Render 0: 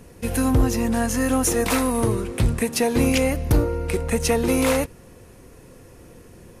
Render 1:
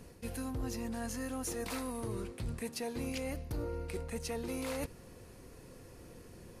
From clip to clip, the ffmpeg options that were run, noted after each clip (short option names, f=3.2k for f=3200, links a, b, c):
-af "equalizer=f=4.5k:t=o:w=0.35:g=5.5,areverse,acompressor=threshold=-29dB:ratio=6,areverse,volume=-7dB"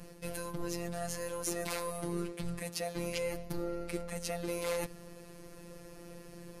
-af "afftfilt=real='hypot(re,im)*cos(PI*b)':imag='0':win_size=1024:overlap=0.75,volume=6.5dB"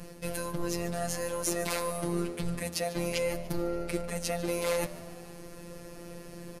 -filter_complex "[0:a]asplit=5[a][b][c][d][e];[b]adelay=146,afreqshift=76,volume=-18.5dB[f];[c]adelay=292,afreqshift=152,volume=-24.2dB[g];[d]adelay=438,afreqshift=228,volume=-29.9dB[h];[e]adelay=584,afreqshift=304,volume=-35.5dB[i];[a][f][g][h][i]amix=inputs=5:normalize=0,volume=5dB"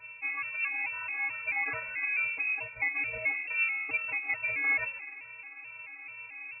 -af "lowpass=f=2.3k:t=q:w=0.5098,lowpass=f=2.3k:t=q:w=0.6013,lowpass=f=2.3k:t=q:w=0.9,lowpass=f=2.3k:t=q:w=2.563,afreqshift=-2700,afftfilt=real='re*gt(sin(2*PI*2.3*pts/sr)*(1-2*mod(floor(b*sr/1024/220),2)),0)':imag='im*gt(sin(2*PI*2.3*pts/sr)*(1-2*mod(floor(b*sr/1024/220),2)),0)':win_size=1024:overlap=0.75,volume=3dB"